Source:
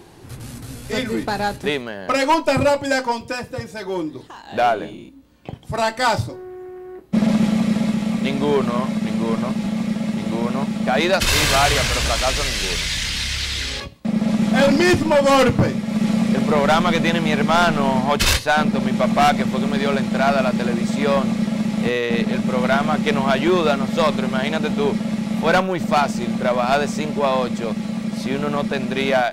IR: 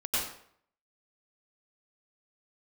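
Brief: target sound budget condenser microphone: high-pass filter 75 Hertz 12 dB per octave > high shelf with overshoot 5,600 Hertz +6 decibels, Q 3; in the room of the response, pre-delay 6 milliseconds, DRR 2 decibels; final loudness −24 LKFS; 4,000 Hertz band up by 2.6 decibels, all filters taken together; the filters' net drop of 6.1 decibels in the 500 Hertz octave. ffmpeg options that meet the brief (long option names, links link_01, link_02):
-filter_complex "[0:a]equalizer=frequency=500:width_type=o:gain=-8,equalizer=frequency=4000:width_type=o:gain=7,asplit=2[link_01][link_02];[1:a]atrim=start_sample=2205,adelay=6[link_03];[link_02][link_03]afir=irnorm=-1:irlink=0,volume=-10dB[link_04];[link_01][link_04]amix=inputs=2:normalize=0,highpass=75,highshelf=frequency=5600:width_type=q:width=3:gain=6,volume=-6.5dB"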